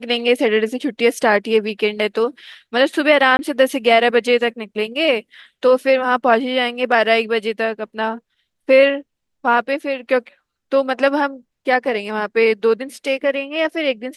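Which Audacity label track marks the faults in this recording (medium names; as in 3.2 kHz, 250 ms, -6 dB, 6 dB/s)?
3.370000	3.390000	dropout 20 ms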